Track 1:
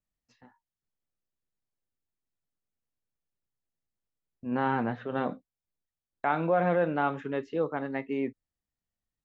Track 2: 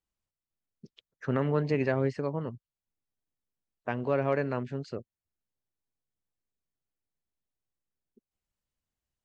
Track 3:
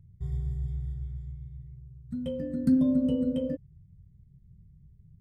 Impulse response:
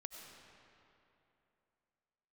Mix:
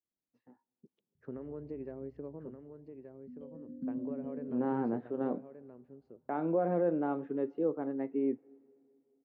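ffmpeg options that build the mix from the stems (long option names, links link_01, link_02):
-filter_complex "[0:a]adelay=50,volume=0.5dB,asplit=2[link_01][link_02];[link_02]volume=-20dB[link_03];[1:a]acompressor=threshold=-29dB:ratio=6,volume=-6dB,asplit=3[link_04][link_05][link_06];[link_05]volume=-17dB[link_07];[link_06]volume=-7dB[link_08];[2:a]adelay=1150,volume=-13dB[link_09];[3:a]atrim=start_sample=2205[link_10];[link_03][link_07]amix=inputs=2:normalize=0[link_11];[link_11][link_10]afir=irnorm=-1:irlink=0[link_12];[link_08]aecho=0:1:1176:1[link_13];[link_01][link_04][link_09][link_12][link_13]amix=inputs=5:normalize=0,bandpass=frequency=330:width_type=q:width=1.5:csg=0"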